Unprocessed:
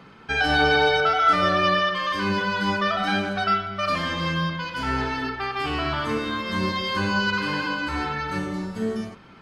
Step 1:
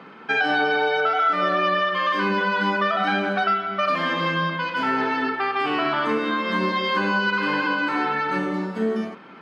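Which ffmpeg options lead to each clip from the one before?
-af "highpass=f=190:w=0.5412,highpass=f=190:w=1.3066,bass=f=250:g=-2,treble=f=4000:g=-14,acompressor=threshold=0.0631:ratio=6,volume=2"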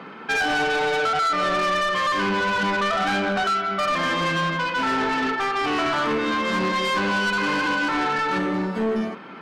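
-af "asoftclip=type=tanh:threshold=0.0668,volume=1.68"

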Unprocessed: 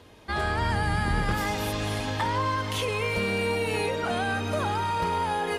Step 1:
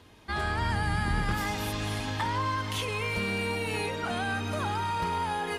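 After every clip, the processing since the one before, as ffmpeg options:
-af "equalizer=f=530:t=o:w=0.72:g=-6,volume=0.794"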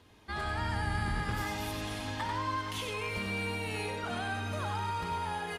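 -af "aecho=1:1:93:0.531,volume=0.531"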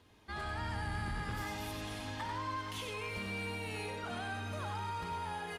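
-af "asoftclip=type=tanh:threshold=0.0531,volume=0.631"

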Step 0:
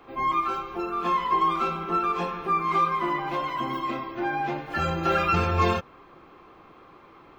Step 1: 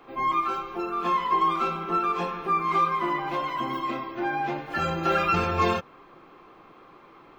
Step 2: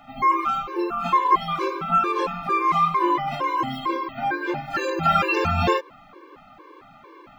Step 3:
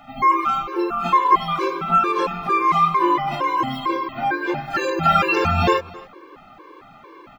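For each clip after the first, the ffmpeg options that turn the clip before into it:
-af "equalizer=f=64:w=1.5:g=-11.5"
-af "afftfilt=real='re*gt(sin(2*PI*2.2*pts/sr)*(1-2*mod(floor(b*sr/1024/300),2)),0)':imag='im*gt(sin(2*PI*2.2*pts/sr)*(1-2*mod(floor(b*sr/1024/300),2)),0)':win_size=1024:overlap=0.75,volume=2.24"
-af "aecho=1:1:268:0.0841,volume=1.41"

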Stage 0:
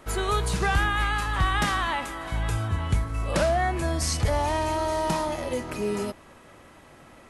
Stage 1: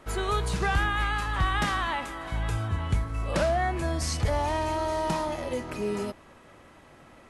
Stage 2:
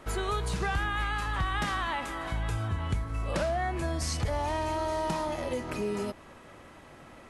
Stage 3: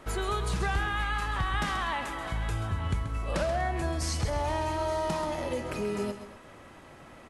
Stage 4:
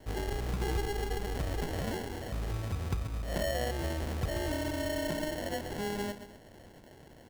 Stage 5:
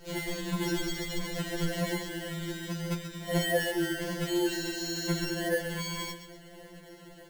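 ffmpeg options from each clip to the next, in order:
-af "highshelf=f=8100:g=-6.5,volume=0.794"
-af "acompressor=threshold=0.0224:ratio=2,volume=1.26"
-af "aecho=1:1:132|244:0.316|0.126"
-af "acrusher=samples=36:mix=1:aa=0.000001,volume=0.668"
-af "asuperstop=centerf=790:order=4:qfactor=3.5,lowshelf=f=130:g=-4,afftfilt=real='re*2.83*eq(mod(b,8),0)':imag='im*2.83*eq(mod(b,8),0)':win_size=2048:overlap=0.75,volume=2.66"

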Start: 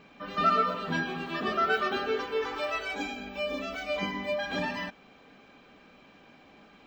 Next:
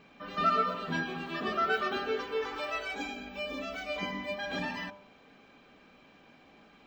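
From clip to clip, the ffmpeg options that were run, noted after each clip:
-af "bandreject=f=99.25:t=h:w=4,bandreject=f=198.5:t=h:w=4,bandreject=f=297.75:t=h:w=4,bandreject=f=397:t=h:w=4,bandreject=f=496.25:t=h:w=4,bandreject=f=595.5:t=h:w=4,bandreject=f=694.75:t=h:w=4,bandreject=f=794:t=h:w=4,bandreject=f=893.25:t=h:w=4,bandreject=f=992.5:t=h:w=4,bandreject=f=1091.75:t=h:w=4,bandreject=f=1191:t=h:w=4,bandreject=f=1290.25:t=h:w=4,bandreject=f=1389.5:t=h:w=4,bandreject=f=1488.75:t=h:w=4,bandreject=f=1588:t=h:w=4,volume=0.75"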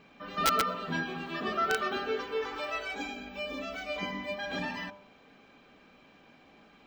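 -af "aeval=exprs='(mod(7.94*val(0)+1,2)-1)/7.94':c=same"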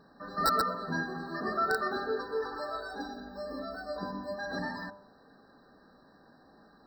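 -af "afftfilt=real='re*eq(mod(floor(b*sr/1024/1900),2),0)':imag='im*eq(mod(floor(b*sr/1024/1900),2),0)':win_size=1024:overlap=0.75"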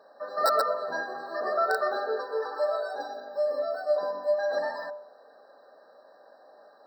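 -af "highpass=f=580:t=q:w=4.9"

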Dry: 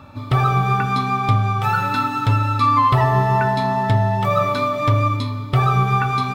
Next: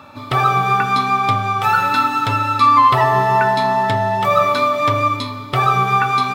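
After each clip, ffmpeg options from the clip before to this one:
-af "highpass=f=450:p=1,volume=1.88"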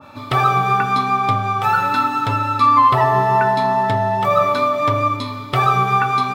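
-af "adynamicequalizer=threshold=0.0631:dfrequency=1500:dqfactor=0.7:tfrequency=1500:tqfactor=0.7:attack=5:release=100:ratio=0.375:range=2.5:mode=cutabove:tftype=highshelf"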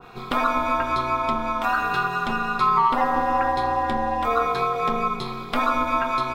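-filter_complex "[0:a]aeval=exprs='val(0)*sin(2*PI*120*n/s)':c=same,asplit=2[s0][s1];[s1]acompressor=threshold=0.0562:ratio=6,volume=0.891[s2];[s0][s2]amix=inputs=2:normalize=0,volume=0.531"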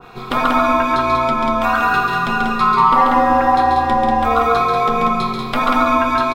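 -af "aecho=1:1:137|189.5:0.631|0.631,volume=1.68"

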